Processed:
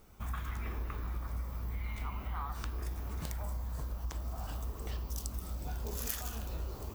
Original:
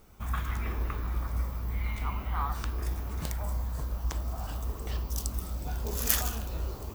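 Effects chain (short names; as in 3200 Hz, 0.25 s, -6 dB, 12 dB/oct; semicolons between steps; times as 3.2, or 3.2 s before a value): compressor 4:1, threshold -32 dBFS, peak gain reduction 11 dB; gain -2.5 dB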